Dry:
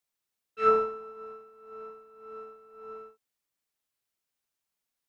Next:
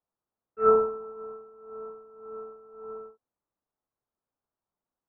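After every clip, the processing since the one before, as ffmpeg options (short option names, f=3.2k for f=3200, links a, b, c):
-af "lowpass=f=1.2k:w=0.5412,lowpass=f=1.2k:w=1.3066,volume=4.5dB"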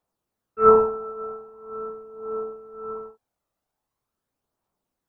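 -af "aphaser=in_gain=1:out_gain=1:delay=1.6:decay=0.32:speed=0.43:type=triangular,volume=7.5dB"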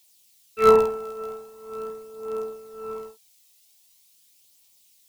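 -af "aexciter=amount=12.1:drive=8.2:freq=2.2k"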